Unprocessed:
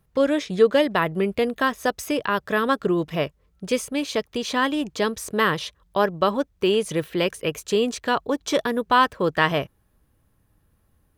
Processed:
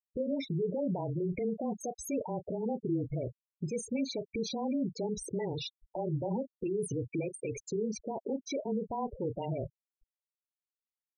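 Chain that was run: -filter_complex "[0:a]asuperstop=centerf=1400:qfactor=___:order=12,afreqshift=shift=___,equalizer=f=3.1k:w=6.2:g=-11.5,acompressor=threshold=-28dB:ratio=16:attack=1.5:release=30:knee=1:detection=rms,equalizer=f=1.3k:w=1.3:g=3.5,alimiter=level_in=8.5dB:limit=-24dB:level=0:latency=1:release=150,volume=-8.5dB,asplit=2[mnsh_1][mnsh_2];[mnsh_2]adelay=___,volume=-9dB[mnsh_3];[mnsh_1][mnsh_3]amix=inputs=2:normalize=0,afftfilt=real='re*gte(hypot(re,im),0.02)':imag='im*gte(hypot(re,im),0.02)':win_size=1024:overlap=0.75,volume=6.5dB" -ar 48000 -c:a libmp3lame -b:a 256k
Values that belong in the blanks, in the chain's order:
1.2, -22, 33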